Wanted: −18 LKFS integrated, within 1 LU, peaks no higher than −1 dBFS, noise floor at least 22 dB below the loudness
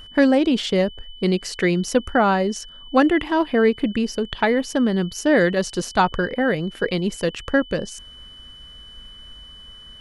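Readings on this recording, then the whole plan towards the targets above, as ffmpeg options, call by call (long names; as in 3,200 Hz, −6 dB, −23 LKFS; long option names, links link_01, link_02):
interfering tone 3,000 Hz; level of the tone −41 dBFS; integrated loudness −20.5 LKFS; sample peak −4.0 dBFS; target loudness −18.0 LKFS
→ -af "bandreject=frequency=3000:width=30"
-af "volume=2.5dB"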